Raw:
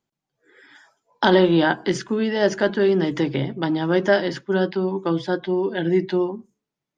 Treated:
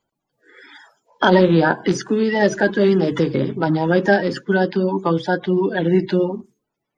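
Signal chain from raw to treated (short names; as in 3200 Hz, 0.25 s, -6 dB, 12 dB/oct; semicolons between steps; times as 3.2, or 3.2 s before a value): bin magnitudes rounded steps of 30 dB; dynamic EQ 3400 Hz, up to -3 dB, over -39 dBFS, Q 0.9; in parallel at -2 dB: compressor, threshold -25 dBFS, peak gain reduction 13 dB; on the sum: gain +1.5 dB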